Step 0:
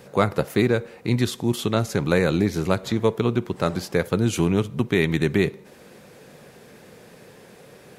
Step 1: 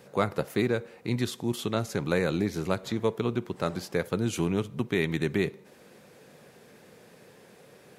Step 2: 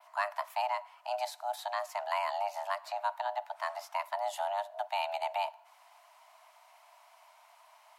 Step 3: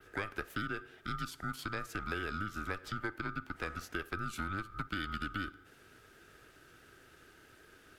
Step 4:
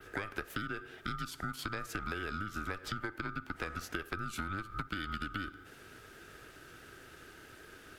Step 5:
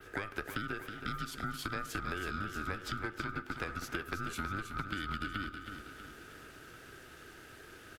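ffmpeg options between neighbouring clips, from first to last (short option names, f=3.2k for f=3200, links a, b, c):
-af "lowshelf=f=62:g=-9.5,volume=-6dB"
-af "afreqshift=500,adynamicequalizer=threshold=0.00251:dfrequency=7100:dqfactor=0.85:tfrequency=7100:tqfactor=0.85:attack=5:release=100:ratio=0.375:range=2:mode=cutabove:tftype=bell,volume=-6.5dB"
-af "acompressor=threshold=-35dB:ratio=4,aeval=exprs='val(0)*sin(2*PI*600*n/s)':c=same,volume=3.5dB"
-af "acompressor=threshold=-40dB:ratio=6,volume=6dB"
-af "aecho=1:1:321|642|963|1284|1605|1926:0.398|0.199|0.0995|0.0498|0.0249|0.0124"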